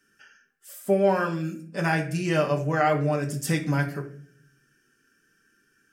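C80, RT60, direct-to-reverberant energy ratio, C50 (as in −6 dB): 15.5 dB, non-exponential decay, 1.0 dB, 11.0 dB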